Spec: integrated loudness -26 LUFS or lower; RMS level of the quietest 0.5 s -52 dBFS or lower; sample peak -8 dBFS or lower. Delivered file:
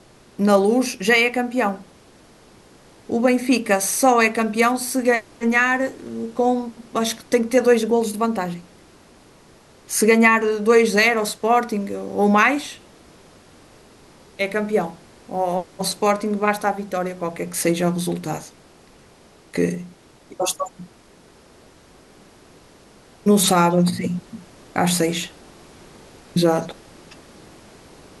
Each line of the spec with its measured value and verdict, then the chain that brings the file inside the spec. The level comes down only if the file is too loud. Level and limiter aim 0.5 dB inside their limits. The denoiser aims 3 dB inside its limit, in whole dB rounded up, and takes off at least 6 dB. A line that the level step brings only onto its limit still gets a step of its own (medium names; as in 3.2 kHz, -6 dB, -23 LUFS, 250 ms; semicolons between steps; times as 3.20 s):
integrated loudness -20.0 LUFS: fail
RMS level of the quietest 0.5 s -50 dBFS: fail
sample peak -3.5 dBFS: fail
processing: trim -6.5 dB